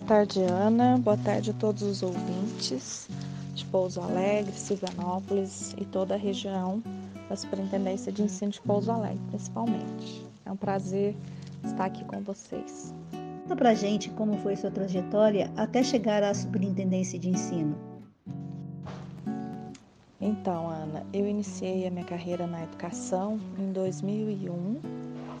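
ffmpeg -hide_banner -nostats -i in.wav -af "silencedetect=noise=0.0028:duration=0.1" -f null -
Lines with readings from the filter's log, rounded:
silence_start: 18.12
silence_end: 18.26 | silence_duration: 0.15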